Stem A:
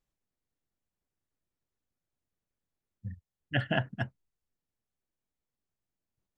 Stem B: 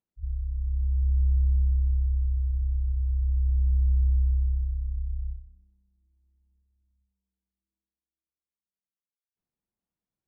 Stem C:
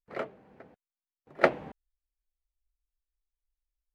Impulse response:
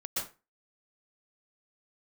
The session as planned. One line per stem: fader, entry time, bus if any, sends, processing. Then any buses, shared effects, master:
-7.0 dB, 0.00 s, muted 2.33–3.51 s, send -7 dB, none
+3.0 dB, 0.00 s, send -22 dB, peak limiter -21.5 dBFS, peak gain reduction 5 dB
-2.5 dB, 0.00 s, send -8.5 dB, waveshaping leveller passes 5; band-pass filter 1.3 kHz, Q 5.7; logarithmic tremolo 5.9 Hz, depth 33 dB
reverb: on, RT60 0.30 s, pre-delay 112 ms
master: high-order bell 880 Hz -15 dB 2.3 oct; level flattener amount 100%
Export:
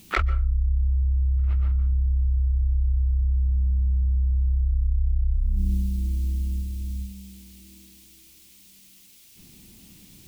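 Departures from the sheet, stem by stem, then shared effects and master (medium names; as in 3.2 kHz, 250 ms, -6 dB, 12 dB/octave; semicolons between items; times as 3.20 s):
stem A: muted; reverb return +8.0 dB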